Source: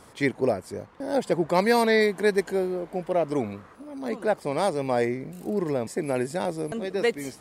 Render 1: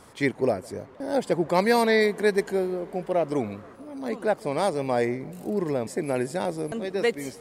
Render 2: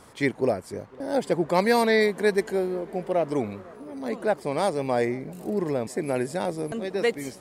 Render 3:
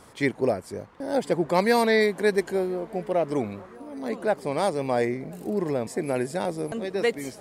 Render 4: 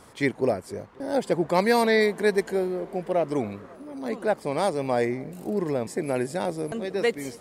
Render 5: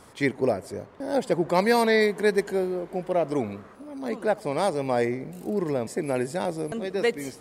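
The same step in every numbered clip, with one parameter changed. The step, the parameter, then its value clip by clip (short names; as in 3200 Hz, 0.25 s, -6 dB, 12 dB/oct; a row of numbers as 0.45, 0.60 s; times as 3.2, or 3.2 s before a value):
dark delay, time: 157, 501, 1025, 269, 74 ms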